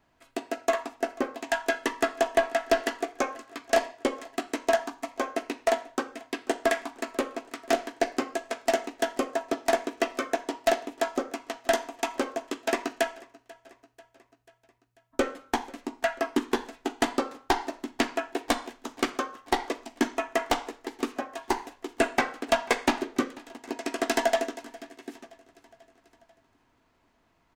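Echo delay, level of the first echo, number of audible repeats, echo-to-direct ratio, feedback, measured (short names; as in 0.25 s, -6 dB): 0.49 s, -23.0 dB, 3, -21.0 dB, 59%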